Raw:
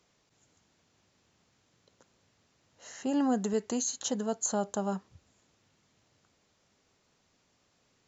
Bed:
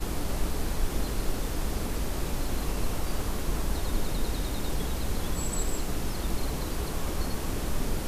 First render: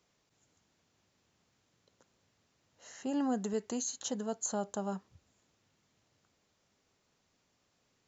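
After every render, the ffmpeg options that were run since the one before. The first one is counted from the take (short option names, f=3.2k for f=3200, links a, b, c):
-af "volume=-4.5dB"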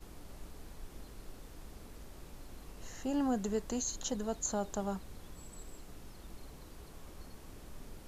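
-filter_complex "[1:a]volume=-20dB[a];[0:a][a]amix=inputs=2:normalize=0"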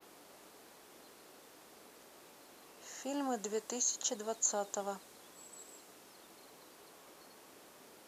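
-af "highpass=390,adynamicequalizer=threshold=0.00158:dfrequency=8000:dqfactor=0.83:tfrequency=8000:tqfactor=0.83:attack=5:release=100:ratio=0.375:range=2.5:mode=boostabove:tftype=bell"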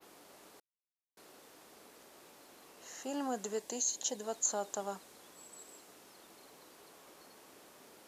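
-filter_complex "[0:a]asettb=1/sr,asplit=3[a][b][c];[a]atrim=end=3.594[d];[b]atrim=start=3.59:end=4.24,asetpts=PTS-STARTPTS,afade=t=in:d=0.004:c=qsin,afade=t=out:st=0.646:d=0.004:c=qsin,equalizer=f=1.3k:w=4.8:g=-14.5[e];[c]atrim=start=4.236[f];[d][e]acrossfade=d=0.004:c1=hsin:c2=qsin[g];[g][f]acrossfade=d=0.004:c1=qsin:c2=hsin,asplit=3[h][i][j];[h]atrim=end=0.6,asetpts=PTS-STARTPTS,afade=t=out:st=0.596:d=0.004:c=hsin[k];[i]atrim=start=0.6:end=1.17,asetpts=PTS-STARTPTS,volume=0[l];[j]atrim=start=1.17,asetpts=PTS-STARTPTS,afade=t=in:d=0.004:c=hsin[m];[k][l][m]concat=n=3:v=0:a=1"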